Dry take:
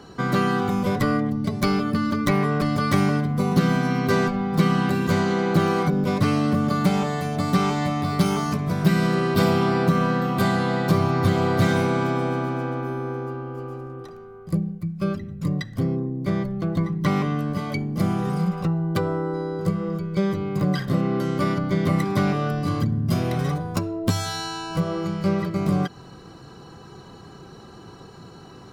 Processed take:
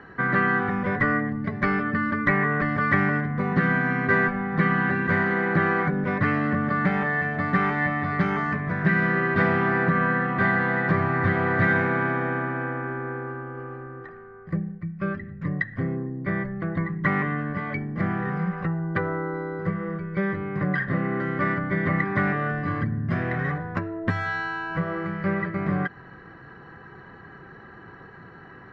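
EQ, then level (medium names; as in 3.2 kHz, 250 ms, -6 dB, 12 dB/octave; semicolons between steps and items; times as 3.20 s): resonant low-pass 1.8 kHz, resonance Q 9.4; -4.0 dB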